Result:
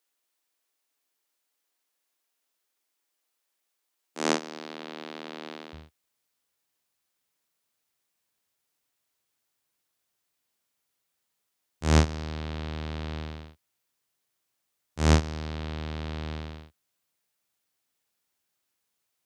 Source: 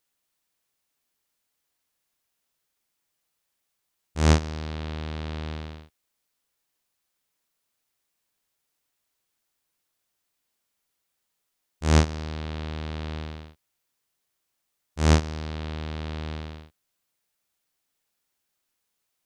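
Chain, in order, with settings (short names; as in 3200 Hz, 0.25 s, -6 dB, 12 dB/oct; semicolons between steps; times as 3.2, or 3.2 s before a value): HPF 260 Hz 24 dB/oct, from 5.73 s 65 Hz; gain -1 dB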